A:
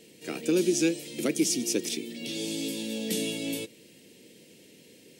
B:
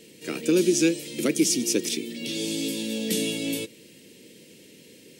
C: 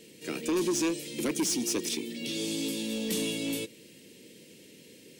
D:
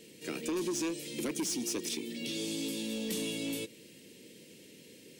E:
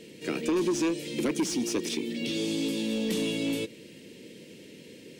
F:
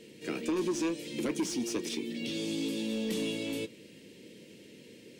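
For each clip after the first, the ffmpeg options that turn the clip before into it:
ffmpeg -i in.wav -af "equalizer=frequency=740:width_type=o:width=0.34:gain=-8,volume=4dB" out.wav
ffmpeg -i in.wav -af "asoftclip=type=tanh:threshold=-21dB,volume=-2.5dB" out.wav
ffmpeg -i in.wav -af "acompressor=threshold=-33dB:ratio=2,volume=-1.5dB" out.wav
ffmpeg -i in.wav -af "lowpass=frequency=3200:poles=1,volume=7.5dB" out.wav
ffmpeg -i in.wav -af "flanger=delay=8.5:depth=1.9:regen=-68:speed=0.62:shape=triangular" out.wav

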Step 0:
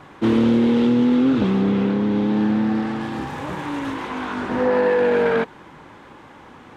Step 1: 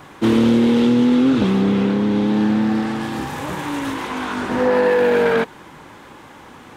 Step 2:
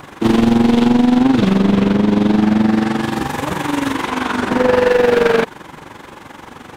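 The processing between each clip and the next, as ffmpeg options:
ffmpeg -i in.wav -af "aemphasis=mode=production:type=50kf,volume=2dB" out.wav
ffmpeg -i in.wav -af "volume=15.5dB,asoftclip=hard,volume=-15.5dB,tremolo=f=23:d=0.71,volume=8.5dB" out.wav

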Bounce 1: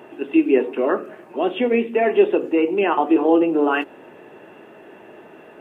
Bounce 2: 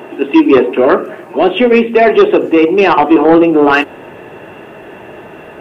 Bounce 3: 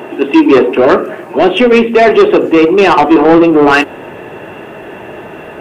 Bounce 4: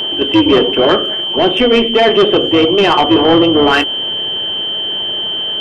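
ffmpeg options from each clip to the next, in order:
ffmpeg -i in.wav -af "asubboost=boost=4.5:cutoff=120,aeval=exprs='0.531*sin(PI/2*1.78*val(0)/0.531)':channel_layout=same,volume=4dB" out.wav
ffmpeg -i in.wav -af "acontrast=31,volume=-1dB" out.wav
ffmpeg -i in.wav -af "aeval=exprs='val(0)+0.251*sin(2*PI*3100*n/s)':channel_layout=same,tremolo=f=210:d=0.462,volume=-2dB" out.wav

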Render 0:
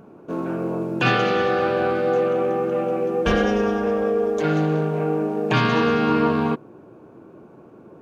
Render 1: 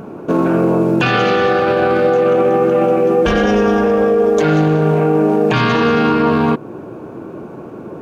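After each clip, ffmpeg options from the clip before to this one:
ffmpeg -i in.wav -filter_complex "[0:a]asplit=2[link_01][link_02];[link_02]acompressor=threshold=-27dB:ratio=6,volume=1dB[link_03];[link_01][link_03]amix=inputs=2:normalize=0,alimiter=limit=-14.5dB:level=0:latency=1:release=18,volume=8.5dB" out.wav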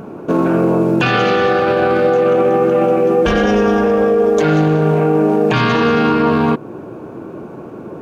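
ffmpeg -i in.wav -af anull out.wav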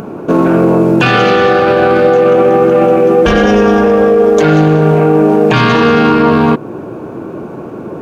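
ffmpeg -i in.wav -filter_complex "[0:a]asplit=2[link_01][link_02];[link_02]asoftclip=type=tanh:threshold=-18.5dB,volume=-10.5dB[link_03];[link_01][link_03]amix=inputs=2:normalize=0,acompressor=mode=upward:threshold=-34dB:ratio=2.5,volume=4dB" out.wav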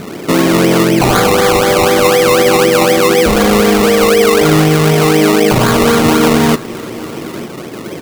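ffmpeg -i in.wav -af "acrusher=samples=22:mix=1:aa=0.000001:lfo=1:lforange=13.2:lforate=4,aecho=1:1:896:0.1,volume=-1dB" out.wav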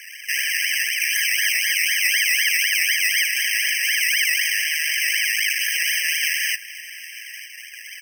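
ffmpeg -i in.wav -af "afreqshift=-74,afftfilt=real='re*eq(mod(floor(b*sr/1024/1600),2),1)':imag='im*eq(mod(floor(b*sr/1024/1600),2),1)':win_size=1024:overlap=0.75" out.wav

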